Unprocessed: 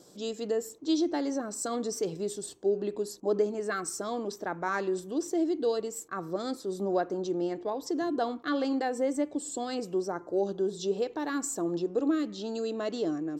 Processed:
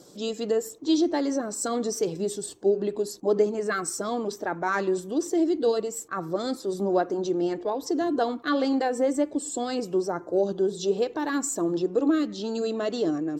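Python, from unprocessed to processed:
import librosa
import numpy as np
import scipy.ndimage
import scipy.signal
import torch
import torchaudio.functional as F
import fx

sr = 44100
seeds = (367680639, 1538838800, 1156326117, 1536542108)

y = fx.spec_quant(x, sr, step_db=15)
y = y * librosa.db_to_amplitude(5.0)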